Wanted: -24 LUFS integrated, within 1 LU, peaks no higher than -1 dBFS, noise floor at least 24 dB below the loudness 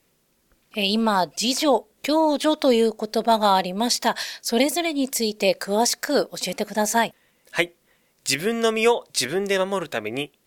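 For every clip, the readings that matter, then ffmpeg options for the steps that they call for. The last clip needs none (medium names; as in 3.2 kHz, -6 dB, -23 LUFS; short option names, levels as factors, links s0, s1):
loudness -22.0 LUFS; peak level -4.5 dBFS; loudness target -24.0 LUFS
-> -af "volume=0.794"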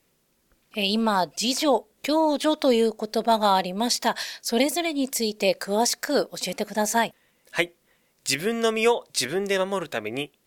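loudness -24.0 LUFS; peak level -6.5 dBFS; noise floor -68 dBFS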